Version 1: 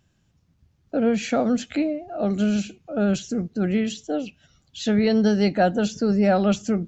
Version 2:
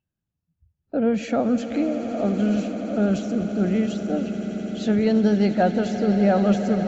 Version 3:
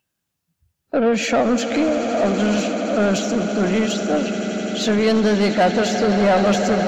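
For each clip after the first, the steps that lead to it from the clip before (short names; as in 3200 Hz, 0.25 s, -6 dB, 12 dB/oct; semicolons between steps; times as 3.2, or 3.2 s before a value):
spectral noise reduction 19 dB; high shelf 2200 Hz -8.5 dB; on a send: swelling echo 85 ms, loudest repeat 8, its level -15.5 dB
high shelf 5700 Hz +11.5 dB; overdrive pedal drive 19 dB, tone 4700 Hz, clips at -8 dBFS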